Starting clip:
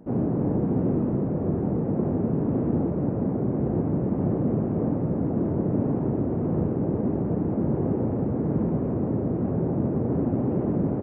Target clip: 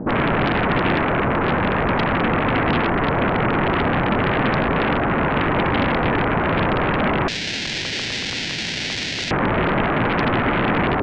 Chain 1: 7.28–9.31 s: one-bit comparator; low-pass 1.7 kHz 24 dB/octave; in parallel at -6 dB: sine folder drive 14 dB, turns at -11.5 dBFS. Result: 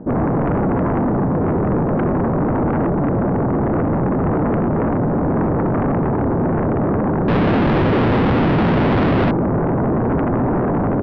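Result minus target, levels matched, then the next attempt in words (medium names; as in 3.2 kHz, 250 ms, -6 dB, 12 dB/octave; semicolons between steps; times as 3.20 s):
sine folder: distortion -15 dB
7.28–9.31 s: one-bit comparator; low-pass 1.7 kHz 24 dB/octave; in parallel at -6 dB: sine folder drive 21 dB, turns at -11.5 dBFS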